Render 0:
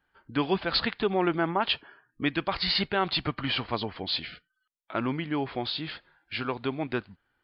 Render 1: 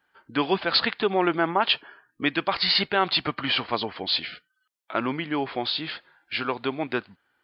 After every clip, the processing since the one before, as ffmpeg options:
ffmpeg -i in.wav -af "highpass=frequency=320:poles=1,volume=5dB" out.wav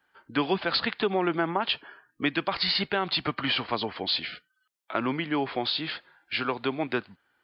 ffmpeg -i in.wav -filter_complex "[0:a]acrossover=split=270[link_01][link_02];[link_02]acompressor=threshold=-23dB:ratio=6[link_03];[link_01][link_03]amix=inputs=2:normalize=0" out.wav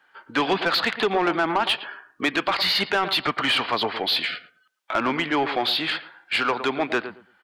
ffmpeg -i in.wav -filter_complex "[0:a]asplit=2[link_01][link_02];[link_02]adelay=112,lowpass=frequency=1100:poles=1,volume=-12dB,asplit=2[link_03][link_04];[link_04]adelay=112,lowpass=frequency=1100:poles=1,volume=0.2,asplit=2[link_05][link_06];[link_06]adelay=112,lowpass=frequency=1100:poles=1,volume=0.2[link_07];[link_01][link_03][link_05][link_07]amix=inputs=4:normalize=0,asplit=2[link_08][link_09];[link_09]highpass=frequency=720:poles=1,volume=17dB,asoftclip=type=tanh:threshold=-11dB[link_10];[link_08][link_10]amix=inputs=2:normalize=0,lowpass=frequency=3600:poles=1,volume=-6dB" out.wav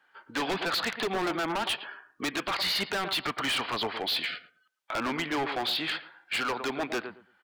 ffmpeg -i in.wav -af "aeval=exprs='0.119*(abs(mod(val(0)/0.119+3,4)-2)-1)':channel_layout=same,volume=-5.5dB" out.wav

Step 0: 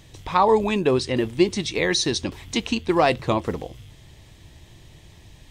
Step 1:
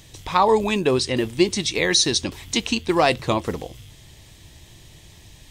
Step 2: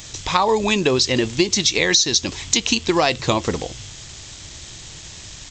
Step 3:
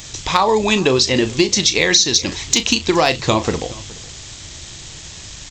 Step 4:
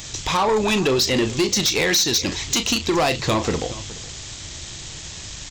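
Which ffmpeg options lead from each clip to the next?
ffmpeg -i in.wav -af "highshelf=frequency=3500:gain=8.5" out.wav
ffmpeg -i in.wav -af "aresample=16000,acrusher=bits=7:mix=0:aa=0.000001,aresample=44100,crystalizer=i=2.5:c=0,acompressor=threshold=-18dB:ratio=6,volume=4.5dB" out.wav
ffmpeg -i in.wav -filter_complex "[0:a]asoftclip=type=hard:threshold=-4.5dB,asplit=2[link_01][link_02];[link_02]adelay=37,volume=-12dB[link_03];[link_01][link_03]amix=inputs=2:normalize=0,aecho=1:1:420:0.0841,volume=2.5dB" out.wav
ffmpeg -i in.wav -af "asoftclip=type=tanh:threshold=-14dB" out.wav

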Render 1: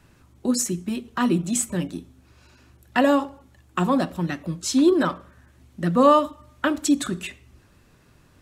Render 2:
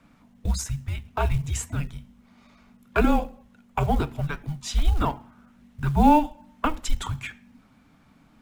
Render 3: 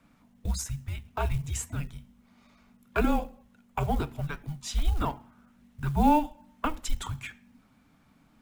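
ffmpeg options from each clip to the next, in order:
ffmpeg -i in.wav -af "afreqshift=-310,bass=frequency=250:gain=-2,treble=frequency=4000:gain=-9,acrusher=bits=8:mode=log:mix=0:aa=0.000001" out.wav
ffmpeg -i in.wav -af "highshelf=frequency=8900:gain=6,volume=-5dB" out.wav

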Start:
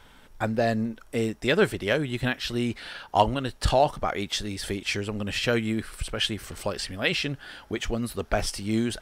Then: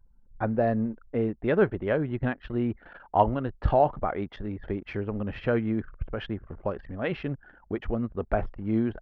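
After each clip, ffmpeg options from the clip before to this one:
ffmpeg -i in.wav -af "lowpass=1400,aemphasis=mode=reproduction:type=50kf,anlmdn=0.0631" out.wav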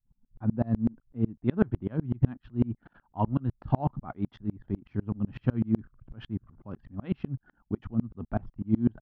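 ffmpeg -i in.wav -af "equalizer=frequency=125:width_type=o:width=1:gain=11,equalizer=frequency=250:width_type=o:width=1:gain=9,equalizer=frequency=500:width_type=o:width=1:gain=-9,equalizer=frequency=1000:width_type=o:width=1:gain=4,equalizer=frequency=2000:width_type=o:width=1:gain=-7,aeval=exprs='val(0)*pow(10,-32*if(lt(mod(-8*n/s,1),2*abs(-8)/1000),1-mod(-8*n/s,1)/(2*abs(-8)/1000),(mod(-8*n/s,1)-2*abs(-8)/1000)/(1-2*abs(-8)/1000))/20)':channel_layout=same" out.wav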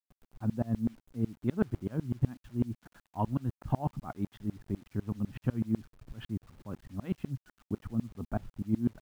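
ffmpeg -i in.wav -filter_complex "[0:a]asplit=2[link_01][link_02];[link_02]acompressor=threshold=-32dB:ratio=6,volume=1dB[link_03];[link_01][link_03]amix=inputs=2:normalize=0,acrusher=bits=8:mix=0:aa=0.000001,volume=-7dB" out.wav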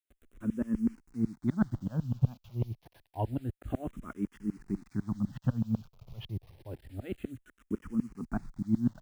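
ffmpeg -i in.wav -filter_complex "[0:a]asplit=2[link_01][link_02];[link_02]afreqshift=-0.28[link_03];[link_01][link_03]amix=inputs=2:normalize=1,volume=3dB" out.wav

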